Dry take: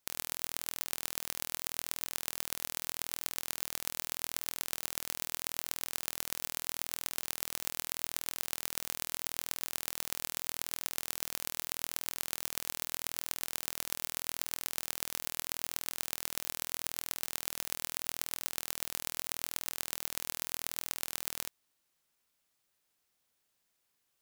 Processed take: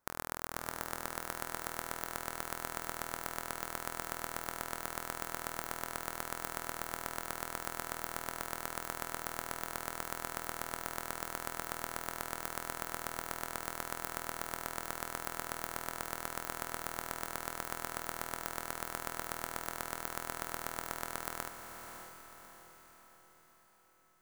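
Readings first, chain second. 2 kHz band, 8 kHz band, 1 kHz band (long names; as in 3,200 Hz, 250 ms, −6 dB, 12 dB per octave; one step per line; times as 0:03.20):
+2.5 dB, −6.0 dB, +8.5 dB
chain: high shelf with overshoot 2,000 Hz −12 dB, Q 1.5
feedback delay with all-pass diffusion 603 ms, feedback 49%, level −7.5 dB
level +5.5 dB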